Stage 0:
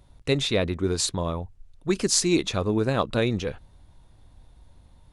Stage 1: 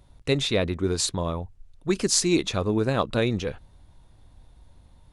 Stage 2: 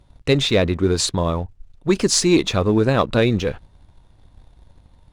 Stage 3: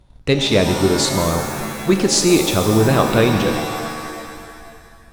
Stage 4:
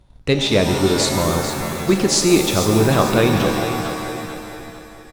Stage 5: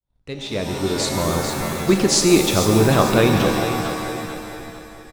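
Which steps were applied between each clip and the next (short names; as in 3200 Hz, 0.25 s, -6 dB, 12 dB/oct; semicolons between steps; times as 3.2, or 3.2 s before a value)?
nothing audible
high shelf 8800 Hz -10 dB; sample leveller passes 1; gain +3.5 dB
shimmer reverb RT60 2 s, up +7 st, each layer -2 dB, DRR 6 dB; gain +1 dB
feedback echo 0.446 s, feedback 41%, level -10 dB; gain -1 dB
opening faded in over 1.65 s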